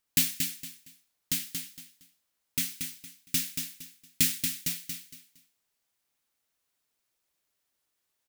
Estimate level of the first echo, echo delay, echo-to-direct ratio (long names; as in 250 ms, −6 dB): −6.0 dB, 231 ms, −5.5 dB